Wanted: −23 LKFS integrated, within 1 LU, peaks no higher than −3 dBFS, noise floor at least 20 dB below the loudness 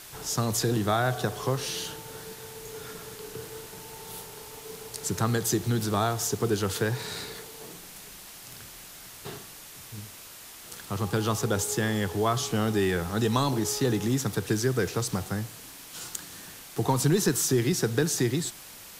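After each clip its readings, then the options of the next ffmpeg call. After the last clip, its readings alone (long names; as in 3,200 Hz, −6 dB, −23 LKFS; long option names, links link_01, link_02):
background noise floor −46 dBFS; target noise floor −48 dBFS; integrated loudness −27.5 LKFS; sample peak −10.0 dBFS; target loudness −23.0 LKFS
→ -af "afftdn=noise_reduction=6:noise_floor=-46"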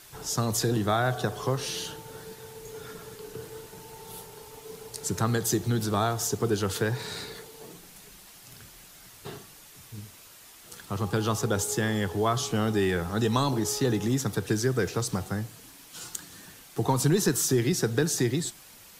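background noise floor −51 dBFS; integrated loudness −27.5 LKFS; sample peak −10.5 dBFS; target loudness −23.0 LKFS
→ -af "volume=4.5dB"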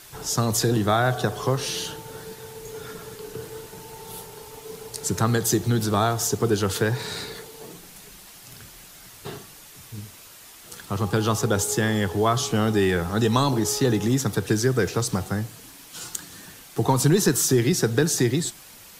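integrated loudness −23.0 LKFS; sample peak −6.0 dBFS; background noise floor −46 dBFS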